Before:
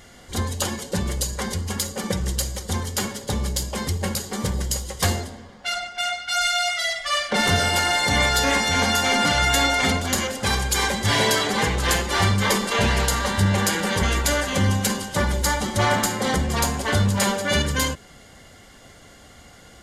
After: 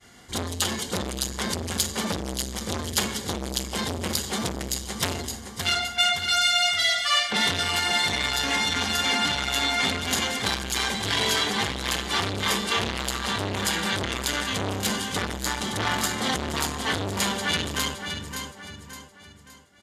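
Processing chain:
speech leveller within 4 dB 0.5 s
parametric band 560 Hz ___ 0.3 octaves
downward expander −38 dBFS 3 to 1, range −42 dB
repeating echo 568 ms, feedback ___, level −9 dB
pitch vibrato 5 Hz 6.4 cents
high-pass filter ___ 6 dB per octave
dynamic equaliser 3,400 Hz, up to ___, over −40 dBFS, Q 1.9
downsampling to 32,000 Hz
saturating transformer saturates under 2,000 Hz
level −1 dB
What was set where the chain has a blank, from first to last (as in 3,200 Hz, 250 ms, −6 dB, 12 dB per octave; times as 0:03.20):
−9.5 dB, 40%, 91 Hz, +6 dB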